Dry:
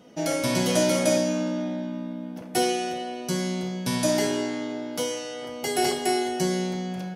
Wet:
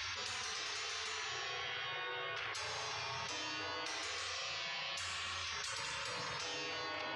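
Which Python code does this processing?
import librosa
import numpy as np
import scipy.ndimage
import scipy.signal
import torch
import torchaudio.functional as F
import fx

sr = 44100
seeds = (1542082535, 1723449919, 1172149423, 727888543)

y = fx.cabinet(x, sr, low_hz=100.0, low_slope=24, high_hz=4300.0, hz=(110.0, 190.0, 470.0), db=(-4, 5, -10))
y = fx.spec_gate(y, sr, threshold_db=-30, keep='weak')
y = fx.rev_spring(y, sr, rt60_s=1.1, pass_ms=(34, 55), chirp_ms=75, drr_db=2.0)
y = fx.env_flatten(y, sr, amount_pct=100)
y = F.gain(torch.from_numpy(y), -1.0).numpy()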